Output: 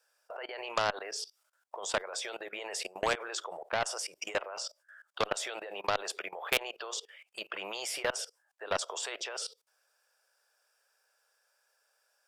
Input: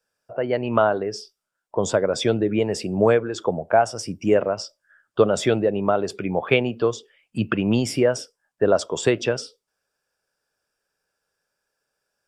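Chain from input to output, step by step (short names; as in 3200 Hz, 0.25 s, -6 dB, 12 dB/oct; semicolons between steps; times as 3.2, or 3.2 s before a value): inverse Chebyshev high-pass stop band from 270 Hz, stop band 40 dB; high shelf 8200 Hz +2.5 dB; level quantiser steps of 21 dB; added harmonics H 7 -28 dB, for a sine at -9.5 dBFS; spectral compressor 2:1; gain -2.5 dB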